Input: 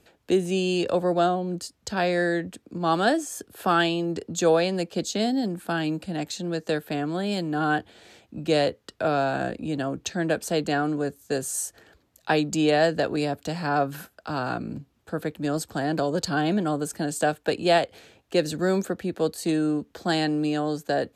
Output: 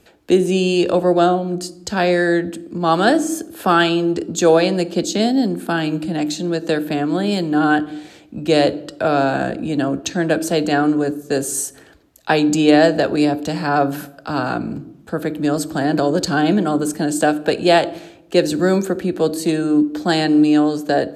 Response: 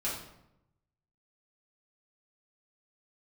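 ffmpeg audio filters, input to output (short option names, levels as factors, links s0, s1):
-filter_complex "[0:a]asplit=2[s0][s1];[s1]equalizer=f=320:t=o:w=0.71:g=14[s2];[1:a]atrim=start_sample=2205[s3];[s2][s3]afir=irnorm=-1:irlink=0,volume=0.112[s4];[s0][s4]amix=inputs=2:normalize=0,volume=2"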